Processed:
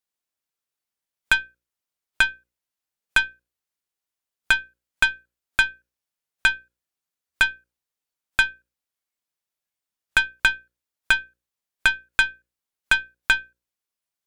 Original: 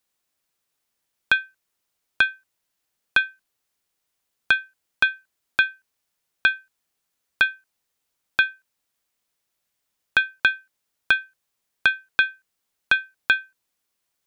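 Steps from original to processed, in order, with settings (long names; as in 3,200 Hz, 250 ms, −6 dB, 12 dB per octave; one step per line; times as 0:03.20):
harmonic generator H 6 −19 dB, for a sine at −4 dBFS
noise reduction from a noise print of the clip's start 10 dB
mains-hum notches 60/120/180/240/300/360/420/480/540 Hz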